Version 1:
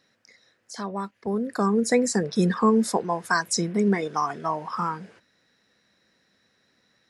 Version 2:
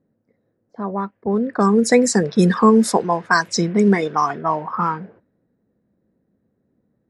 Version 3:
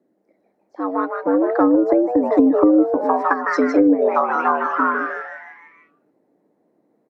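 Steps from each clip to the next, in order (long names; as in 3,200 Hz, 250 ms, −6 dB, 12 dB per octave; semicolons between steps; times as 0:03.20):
low-pass that shuts in the quiet parts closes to 360 Hz, open at −18.5 dBFS; level +7 dB
echo with shifted repeats 154 ms, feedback 51%, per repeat +150 Hz, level −6 dB; frequency shifter +90 Hz; treble cut that deepens with the level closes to 360 Hz, closed at −10 dBFS; level +2 dB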